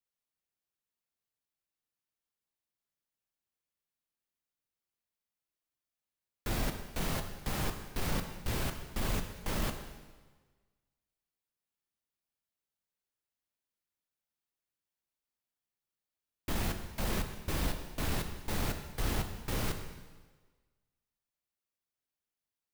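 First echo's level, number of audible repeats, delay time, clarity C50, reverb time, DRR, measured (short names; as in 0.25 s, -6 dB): none, none, none, 8.0 dB, 1.4 s, 5.5 dB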